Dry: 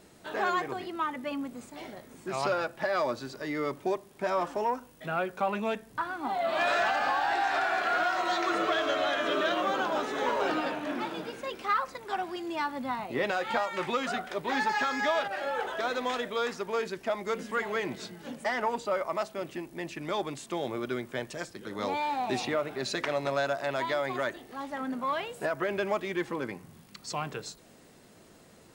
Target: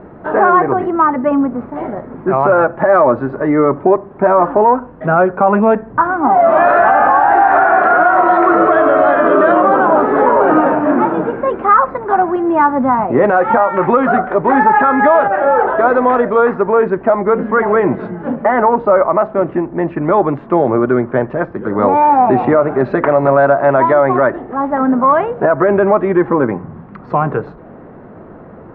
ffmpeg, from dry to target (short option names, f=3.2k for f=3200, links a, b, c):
-af "lowpass=f=1.4k:w=0.5412,lowpass=f=1.4k:w=1.3066,alimiter=level_in=22.5dB:limit=-1dB:release=50:level=0:latency=1,volume=-1dB"